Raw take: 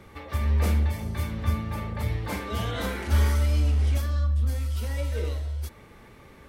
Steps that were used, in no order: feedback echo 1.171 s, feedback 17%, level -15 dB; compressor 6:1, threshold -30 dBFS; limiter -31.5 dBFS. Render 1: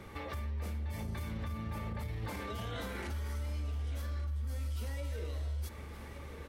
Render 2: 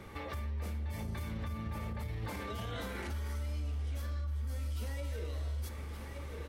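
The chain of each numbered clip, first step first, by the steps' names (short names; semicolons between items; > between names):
compressor > feedback echo > limiter; feedback echo > compressor > limiter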